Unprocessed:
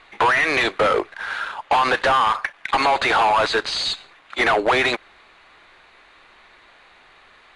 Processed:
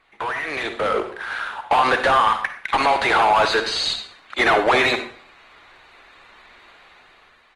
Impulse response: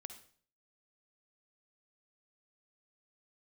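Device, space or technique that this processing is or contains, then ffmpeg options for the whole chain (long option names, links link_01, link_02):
speakerphone in a meeting room: -filter_complex "[1:a]atrim=start_sample=2205[link_01];[0:a][link_01]afir=irnorm=-1:irlink=0,asplit=2[link_02][link_03];[link_03]adelay=120,highpass=300,lowpass=3400,asoftclip=type=hard:threshold=-21dB,volume=-29dB[link_04];[link_02][link_04]amix=inputs=2:normalize=0,dynaudnorm=framelen=370:gausssize=5:maxgain=11dB,volume=-3.5dB" -ar 48000 -c:a libopus -b:a 24k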